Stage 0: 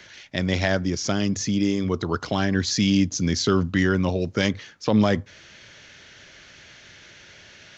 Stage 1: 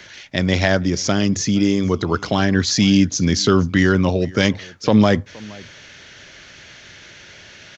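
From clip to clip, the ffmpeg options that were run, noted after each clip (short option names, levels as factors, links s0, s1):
-af "aecho=1:1:470:0.0708,volume=1.88"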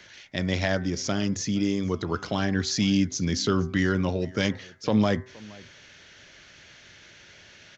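-af "bandreject=f=127.8:t=h:w=4,bandreject=f=255.6:t=h:w=4,bandreject=f=383.4:t=h:w=4,bandreject=f=511.2:t=h:w=4,bandreject=f=639:t=h:w=4,bandreject=f=766.8:t=h:w=4,bandreject=f=894.6:t=h:w=4,bandreject=f=1022.4:t=h:w=4,bandreject=f=1150.2:t=h:w=4,bandreject=f=1278:t=h:w=4,bandreject=f=1405.8:t=h:w=4,bandreject=f=1533.6:t=h:w=4,bandreject=f=1661.4:t=h:w=4,bandreject=f=1789.2:t=h:w=4,bandreject=f=1917:t=h:w=4,bandreject=f=2044.8:t=h:w=4,bandreject=f=2172.6:t=h:w=4,volume=0.376"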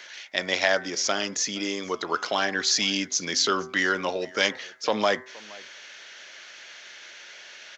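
-af "highpass=590,volume=2.11"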